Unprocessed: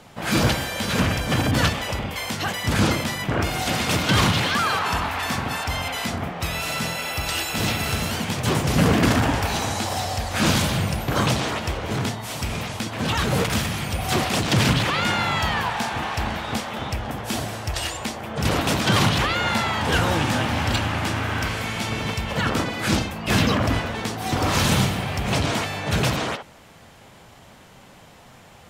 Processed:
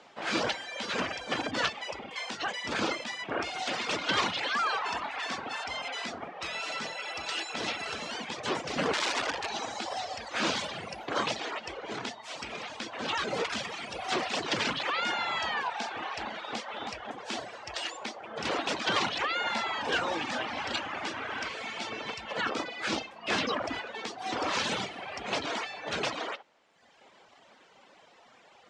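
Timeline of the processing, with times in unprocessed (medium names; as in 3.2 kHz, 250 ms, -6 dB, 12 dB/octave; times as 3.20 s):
8.93–9.50 s: integer overflow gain 15 dB
12.38–14.60 s: two-band feedback delay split 1.4 kHz, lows 278 ms, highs 191 ms, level -9.5 dB
16.36–16.78 s: echo throw 320 ms, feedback 30%, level -7 dB
whole clip: low-pass 8.9 kHz 24 dB/octave; reverb removal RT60 1.2 s; three-band isolator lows -23 dB, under 270 Hz, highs -19 dB, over 6.7 kHz; trim -5 dB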